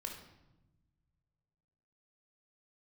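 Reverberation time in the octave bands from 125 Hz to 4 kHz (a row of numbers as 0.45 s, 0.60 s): 2.6 s, 1.8 s, 1.1 s, 0.90 s, 0.75 s, 0.70 s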